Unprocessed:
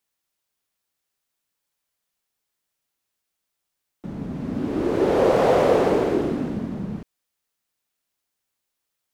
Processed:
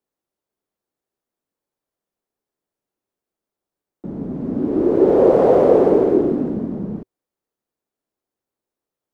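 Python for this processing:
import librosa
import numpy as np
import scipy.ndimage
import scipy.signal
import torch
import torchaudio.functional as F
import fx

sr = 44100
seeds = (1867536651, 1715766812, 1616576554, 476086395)

y = fx.curve_eq(x, sr, hz=(110.0, 380.0, 2600.0), db=(0, 9, -10))
y = F.gain(torch.from_numpy(y), -1.0).numpy()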